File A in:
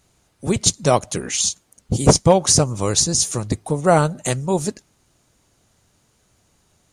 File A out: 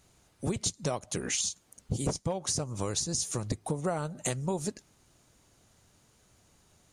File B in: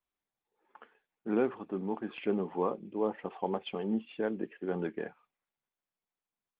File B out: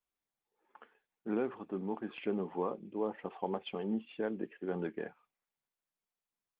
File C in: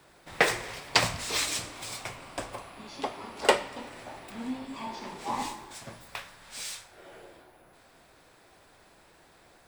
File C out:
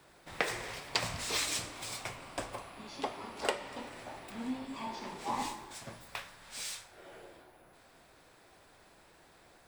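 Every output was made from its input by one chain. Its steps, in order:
downward compressor 16 to 1, threshold −25 dBFS
level −2.5 dB

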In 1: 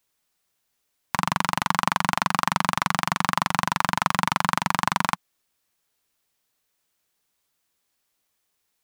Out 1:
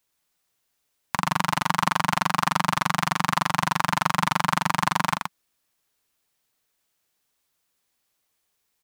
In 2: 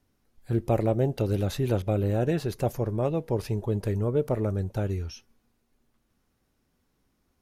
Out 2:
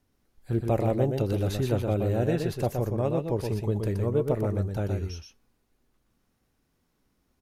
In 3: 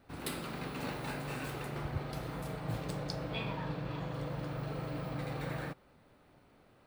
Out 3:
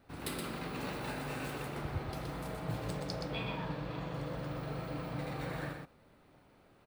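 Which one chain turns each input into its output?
single-tap delay 122 ms −5 dB
level −1 dB

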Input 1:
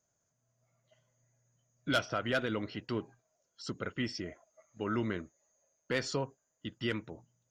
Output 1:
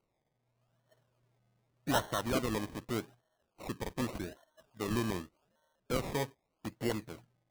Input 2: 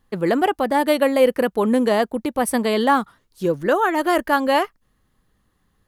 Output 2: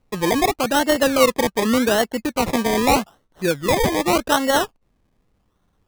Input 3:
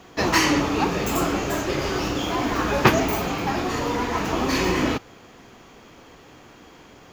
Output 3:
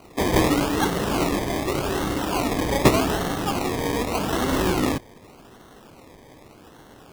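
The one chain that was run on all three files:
sample-and-hold swept by an LFO 25×, swing 60% 0.84 Hz

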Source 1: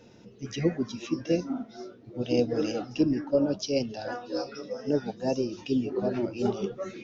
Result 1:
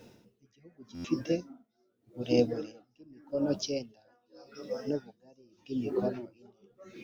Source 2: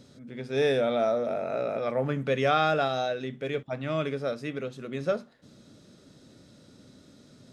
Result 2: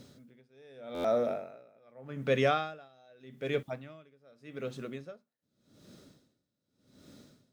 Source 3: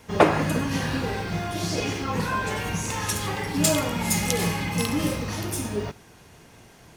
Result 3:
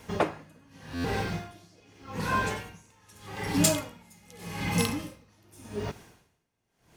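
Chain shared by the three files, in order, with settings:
bit-depth reduction 12 bits, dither triangular
buffer that repeats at 0:00.94, samples 512, times 8
tremolo with a sine in dB 0.84 Hz, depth 32 dB

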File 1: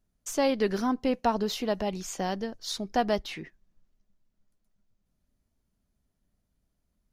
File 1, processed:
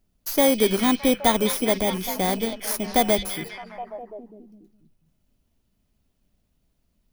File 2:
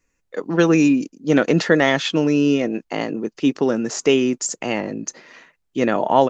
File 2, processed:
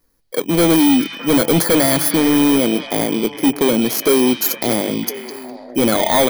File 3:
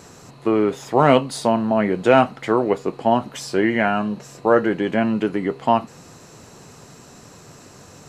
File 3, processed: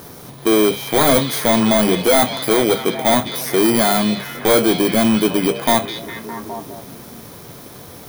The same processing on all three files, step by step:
samples in bit-reversed order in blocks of 16 samples
hard clipping −17 dBFS
mains-hum notches 50/100/150/200 Hz
on a send: echo through a band-pass that steps 205 ms, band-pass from 3,400 Hz, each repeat −0.7 octaves, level −3.5 dB
on the sum: level +7 dB

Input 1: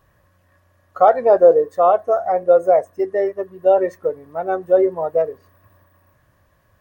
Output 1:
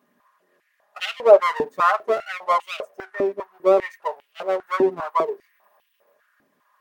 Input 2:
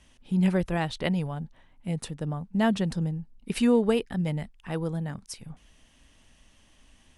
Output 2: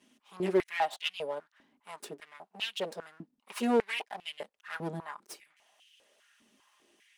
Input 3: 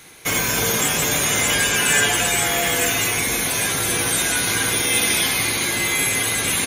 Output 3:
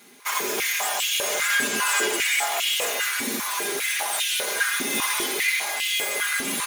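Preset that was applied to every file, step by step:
lower of the sound and its delayed copy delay 4.9 ms
high-pass on a step sequencer 5 Hz 260–2,900 Hz
level −5.5 dB

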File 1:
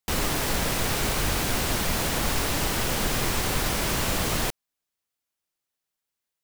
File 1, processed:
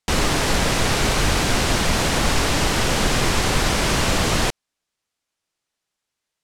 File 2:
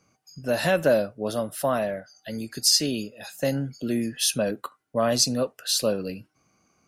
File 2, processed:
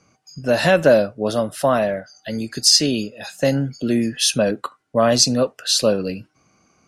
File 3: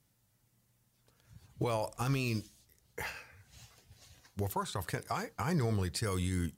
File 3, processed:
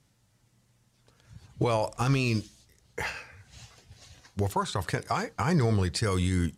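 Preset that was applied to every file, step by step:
low-pass filter 8,200 Hz 12 dB per octave
level +7 dB

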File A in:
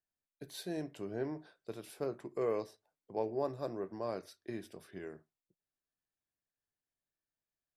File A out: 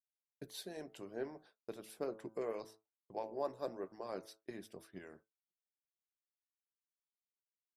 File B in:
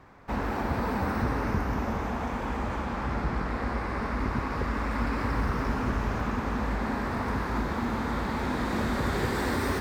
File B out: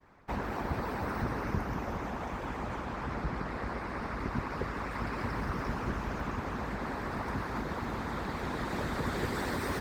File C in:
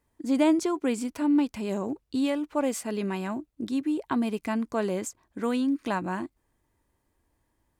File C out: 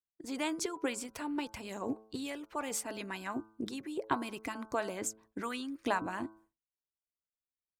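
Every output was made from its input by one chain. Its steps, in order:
harmonic and percussive parts rebalanced harmonic −15 dB
hum removal 109.3 Hz, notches 14
downward expander −56 dBFS

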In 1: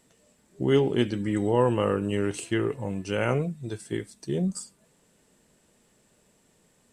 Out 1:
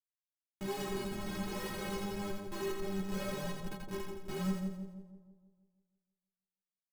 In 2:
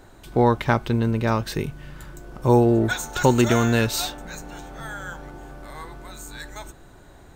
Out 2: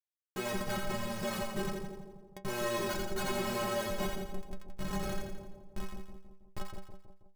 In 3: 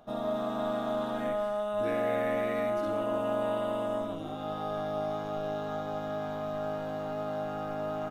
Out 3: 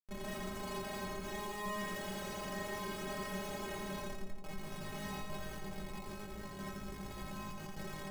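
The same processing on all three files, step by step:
inverse Chebyshev low-pass filter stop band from 5,400 Hz, stop band 60 dB
low-shelf EQ 88 Hz −9.5 dB
comparator with hysteresis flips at −30.5 dBFS
stiff-string resonator 190 Hz, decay 0.22 s, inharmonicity 0.008
on a send: echo with a time of its own for lows and highs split 840 Hz, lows 161 ms, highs 85 ms, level −4 dB
on the sum: level +2.5 dB

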